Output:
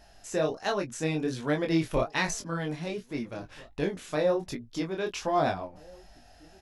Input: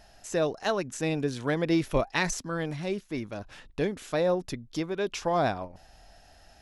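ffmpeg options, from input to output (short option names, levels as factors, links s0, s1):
-filter_complex "[0:a]flanger=delay=20:depth=6.3:speed=1.3,asplit=2[s0][s1];[s1]adelay=17,volume=0.251[s2];[s0][s2]amix=inputs=2:normalize=0,asplit=2[s3][s4];[s4]adelay=1633,volume=0.0631,highshelf=f=4000:g=-36.7[s5];[s3][s5]amix=inputs=2:normalize=0,volume=1.26"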